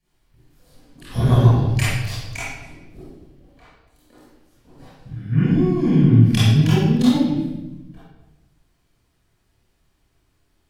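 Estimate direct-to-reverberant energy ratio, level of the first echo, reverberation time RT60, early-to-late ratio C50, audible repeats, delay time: -12.0 dB, none, 1.0 s, -5.0 dB, none, none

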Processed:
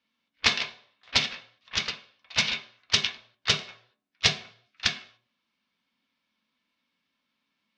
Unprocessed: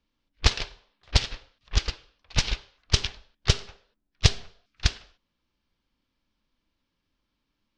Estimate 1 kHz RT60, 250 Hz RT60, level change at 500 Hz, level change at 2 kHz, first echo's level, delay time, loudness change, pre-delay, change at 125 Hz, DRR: 0.45 s, 0.35 s, -3.0 dB, +5.0 dB, none, none, +1.0 dB, 3 ms, -13.5 dB, 2.0 dB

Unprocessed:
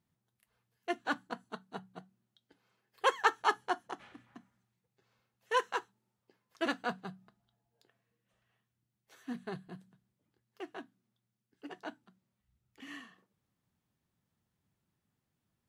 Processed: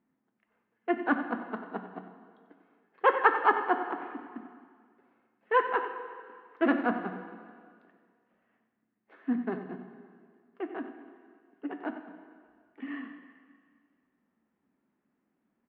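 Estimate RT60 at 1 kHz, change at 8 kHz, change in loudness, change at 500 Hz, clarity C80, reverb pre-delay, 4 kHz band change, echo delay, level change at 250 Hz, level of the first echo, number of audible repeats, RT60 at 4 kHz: 1.9 s, under -25 dB, +5.5 dB, +7.5 dB, 8.0 dB, 7 ms, -6.5 dB, 92 ms, +11.5 dB, -12.0 dB, 1, 1.9 s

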